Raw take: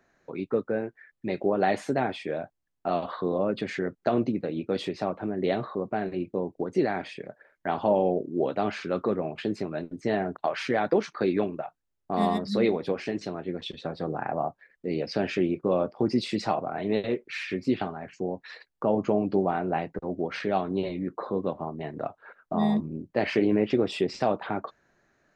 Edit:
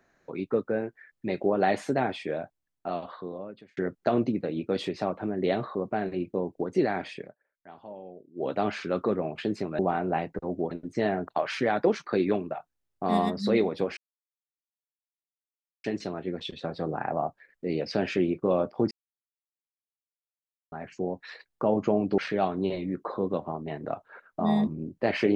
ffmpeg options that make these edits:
-filter_complex "[0:a]asplit=10[a][b][c][d][e][f][g][h][i][j];[a]atrim=end=3.77,asetpts=PTS-STARTPTS,afade=t=out:st=2.29:d=1.48[k];[b]atrim=start=3.77:end=7.35,asetpts=PTS-STARTPTS,afade=t=in:d=0.004:c=hsin,afade=t=out:st=3.43:d=0.15:silence=0.1[l];[c]atrim=start=7.35:end=8.35,asetpts=PTS-STARTPTS,volume=-20dB[m];[d]atrim=start=8.35:end=9.792,asetpts=PTS-STARTPTS,afade=t=in:d=0.15:silence=0.1[n];[e]atrim=start=19.388:end=20.312[o];[f]atrim=start=9.788:end=13.05,asetpts=PTS-STARTPTS,afade=t=out:st=3.258:d=0.004:c=hsin,apad=pad_dur=1.87[p];[g]atrim=start=13.05:end=16.12,asetpts=PTS-STARTPTS,afade=t=in:d=0.004:c=hsin,afade=t=out:st=3.066:d=0.004:c=hsin[q];[h]atrim=start=16.12:end=17.93,asetpts=PTS-STARTPTS,volume=0[r];[i]atrim=start=17.93:end=19.392,asetpts=PTS-STARTPTS,afade=t=in:d=0.004:c=hsin[s];[j]atrim=start=20.308[t];[k][l][m][n]concat=n=4:v=0:a=1[u];[u][o]acrossfade=d=0.004:c1=hsin:c2=hsin[v];[p][q][r][s]concat=n=4:v=0:a=1[w];[v][w]acrossfade=d=0.004:c1=hsin:c2=hsin[x];[x][t]acrossfade=d=0.004:c1=hsin:c2=hsin"

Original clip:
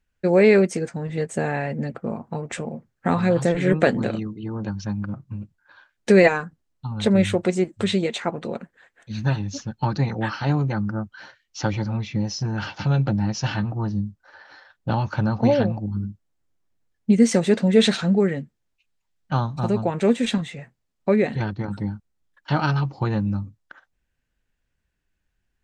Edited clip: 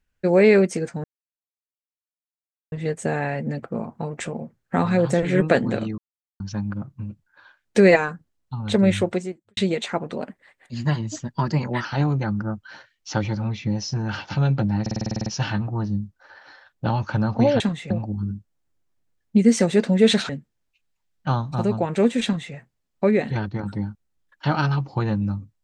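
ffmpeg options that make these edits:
-filter_complex "[0:a]asplit=19[a][b][c][d][e][f][g][h][i][j][k][l][m][n][o][p][q][r][s];[a]atrim=end=1.04,asetpts=PTS-STARTPTS,afade=t=out:st=1.036:d=0.004:c=hsin,apad=pad_dur=1.68[t];[b]atrim=start=1.04:end=4.3,asetpts=PTS-STARTPTS,afade=t=in:d=0.004:c=hsin,afade=t=out:st=3.256:d=0.004:c=hsin[u];[c]atrim=start=4.3:end=4.72,asetpts=PTS-STARTPTS,volume=0[v];[d]atrim=start=4.72:end=7.89,asetpts=PTS-STARTPTS,afade=t=in:d=0.004:c=hsin,afade=t=out:st=2.68:d=0.49:c=qua[w];[e]atrim=start=7.89:end=8.494,asetpts=PTS-STARTPTS,afade=t=in:d=0.004:c=hsin[x];[f]atrim=start=8.49:end=10.34,asetpts=PTS-STARTPTS,asetrate=48510,aresample=44100,atrim=end_sample=74168,asetpts=PTS-STARTPTS[y];[g]atrim=start=10.336:end=13.352[z];[h]atrim=start=13.298:end=13.352[aa];[i]atrim=start=13.298:end=13.352[ab];[j]atrim=start=13.298:end=13.352[ac];[k]atrim=start=13.298:end=13.352[ad];[l]atrim=start=13.298:end=13.352[ae];[m]atrim=start=13.298:end=13.352[af];[n]atrim=start=13.298:end=13.352[ag];[o]atrim=start=13.298:end=13.352[ah];[p]atrim=start=13.298:end=15.642[ai];[q]atrim=start=20.288:end=20.592[aj];[r]atrim=start=15.638:end=18.032[ak];[s]atrim=start=18.338[al];[t][u][v][w][x]concat=n=5:v=0:a=1[am];[am][y]acrossfade=d=0.004:c1=hsin:c2=hsin[an];[an][z]acrossfade=d=0.004:c1=hsin:c2=hsin[ao];[ao][aa]acrossfade=d=0.004:c1=hsin:c2=hsin[ap];[ap][ab]acrossfade=d=0.004:c1=hsin:c2=hsin[aq];[aq][ac]acrossfade=d=0.004:c1=hsin:c2=hsin[ar];[ar][ad]acrossfade=d=0.004:c1=hsin:c2=hsin[as];[as][ae]acrossfade=d=0.004:c1=hsin:c2=hsin[at];[at][af]acrossfade=d=0.004:c1=hsin:c2=hsin[au];[au][ag]acrossfade=d=0.004:c1=hsin:c2=hsin[av];[av][ah]acrossfade=d=0.004:c1=hsin:c2=hsin[aw];[aw][ai]acrossfade=d=0.004:c1=hsin:c2=hsin[ax];[ax][aj]acrossfade=d=0.004:c1=hsin:c2=hsin[ay];[ay][ak]acrossfade=d=0.004:c1=hsin:c2=hsin[az];[az][al]acrossfade=d=0.004:c1=hsin:c2=hsin"

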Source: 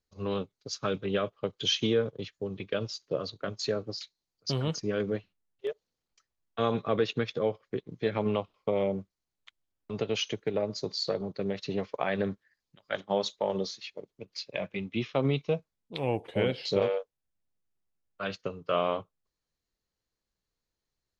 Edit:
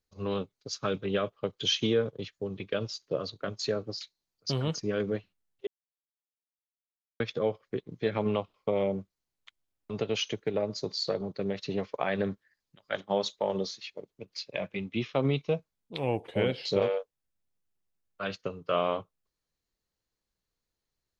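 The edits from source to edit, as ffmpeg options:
-filter_complex "[0:a]asplit=3[a][b][c];[a]atrim=end=5.67,asetpts=PTS-STARTPTS,afade=t=out:st=5.666:d=0.004:c=hsin[d];[b]atrim=start=5.67:end=7.2,asetpts=PTS-STARTPTS,volume=0[e];[c]atrim=start=7.2,asetpts=PTS-STARTPTS,afade=t=in:d=0.004:c=hsin[f];[d][e][f]concat=n=3:v=0:a=1"

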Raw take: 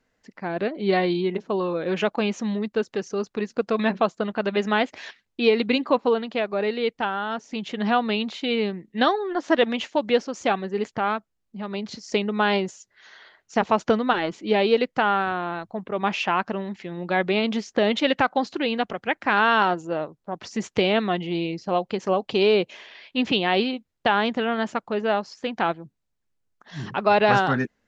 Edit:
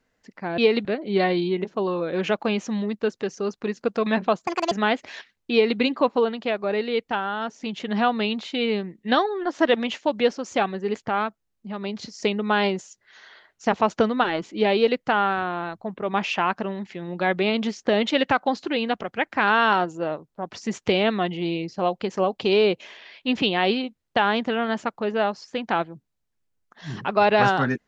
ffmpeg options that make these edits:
-filter_complex "[0:a]asplit=5[a][b][c][d][e];[a]atrim=end=0.582[f];[b]atrim=start=5.408:end=5.682[g];[c]atrim=start=0.578:end=4.204[h];[d]atrim=start=4.2:end=4.61,asetpts=PTS-STARTPTS,asetrate=73647,aresample=44100[i];[e]atrim=start=4.606[j];[f][g]acrossfade=d=0.004:c1=hsin:c2=hsin[k];[k][h]acrossfade=d=0.004:c1=hsin:c2=hsin[l];[l][i]acrossfade=d=0.004:c1=hsin:c2=hsin[m];[m][j]acrossfade=d=0.004:c1=hsin:c2=hsin"

